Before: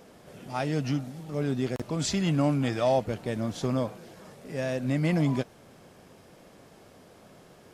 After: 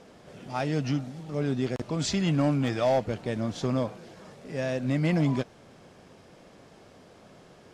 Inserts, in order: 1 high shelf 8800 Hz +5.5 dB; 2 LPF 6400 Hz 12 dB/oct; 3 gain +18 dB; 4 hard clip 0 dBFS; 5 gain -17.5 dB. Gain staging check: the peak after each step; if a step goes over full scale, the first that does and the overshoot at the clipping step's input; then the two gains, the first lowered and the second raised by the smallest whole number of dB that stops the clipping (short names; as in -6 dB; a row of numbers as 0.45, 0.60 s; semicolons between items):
-13.5, -13.5, +4.5, 0.0, -17.5 dBFS; step 3, 4.5 dB; step 3 +13 dB, step 5 -12.5 dB